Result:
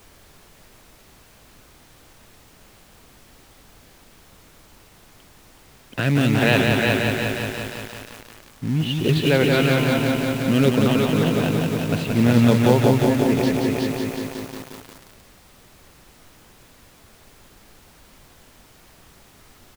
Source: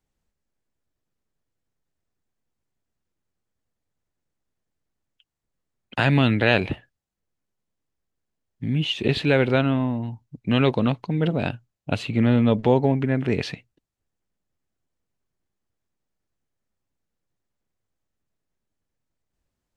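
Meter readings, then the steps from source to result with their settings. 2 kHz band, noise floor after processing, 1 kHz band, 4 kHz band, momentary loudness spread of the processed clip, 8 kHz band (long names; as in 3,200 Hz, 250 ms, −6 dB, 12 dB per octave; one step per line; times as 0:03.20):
+3.5 dB, −52 dBFS, +3.0 dB, +3.5 dB, 15 LU, can't be measured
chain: on a send: repeating echo 373 ms, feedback 38%, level −5.5 dB
on the sum: rotating-speaker cabinet horn 0.7 Hz
in parallel at −4 dB: log-companded quantiser 4 bits
on the sum: high-pass filter 56 Hz 6 dB per octave
background noise pink −48 dBFS
feedback echo at a low word length 177 ms, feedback 80%, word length 6 bits, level −3.5 dB
level −2 dB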